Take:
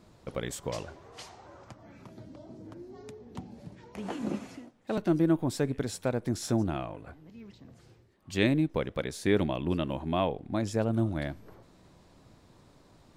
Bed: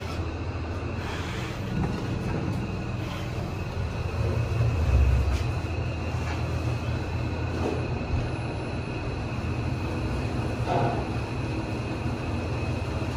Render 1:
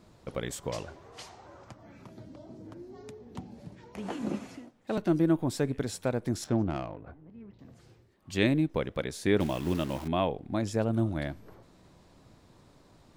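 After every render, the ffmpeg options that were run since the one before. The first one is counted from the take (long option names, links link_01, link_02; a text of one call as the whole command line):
ffmpeg -i in.wav -filter_complex "[0:a]asettb=1/sr,asplit=3[link_01][link_02][link_03];[link_01]atrim=end=6.444[link_04];[link_02]atrim=start=6.44:end=7.59,asetpts=PTS-STARTPTS,afade=type=in:duration=0.004:curve=qsin,afade=type=out:start_time=1.146:duration=0.004:curve=qsin,adynamicsmooth=sensitivity=5.5:basefreq=1500[link_05];[link_03]atrim=start=7.586[link_06];[link_04][link_05]acrossfade=duration=0.004:curve1=hsin:curve2=qsin[link_07];[link_07][link_06]acrossfade=duration=0.004:curve1=qsin:curve2=hsin,asettb=1/sr,asplit=3[link_08][link_09][link_10];[link_08]atrim=end=9.404[link_11];[link_09]atrim=start=9.4:end=10.08,asetpts=PTS-STARTPTS,afade=type=in:duration=0.004:curve=qsin,afade=type=out:start_time=0.676:duration=0.004:curve=qsin,acrusher=bits=8:dc=4:mix=0:aa=0.000001[link_12];[link_10]atrim=start=10.076[link_13];[link_11][link_12]acrossfade=duration=0.004:curve1=hsin:curve2=qsin[link_14];[link_14][link_13]acrossfade=duration=0.004:curve1=qsin:curve2=hsin" out.wav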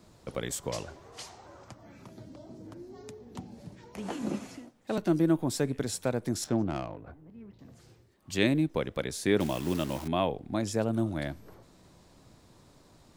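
ffmpeg -i in.wav -filter_complex "[0:a]acrossover=split=120|4600[link_01][link_02][link_03];[link_01]alimiter=level_in=16dB:limit=-24dB:level=0:latency=1,volume=-16dB[link_04];[link_03]acontrast=34[link_05];[link_04][link_02][link_05]amix=inputs=3:normalize=0" out.wav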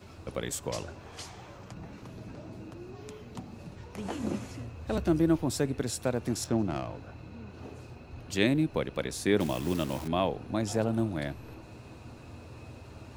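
ffmpeg -i in.wav -i bed.wav -filter_complex "[1:a]volume=-18dB[link_01];[0:a][link_01]amix=inputs=2:normalize=0" out.wav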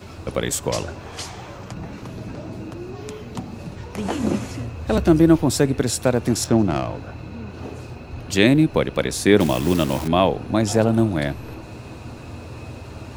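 ffmpeg -i in.wav -af "volume=11dB,alimiter=limit=-1dB:level=0:latency=1" out.wav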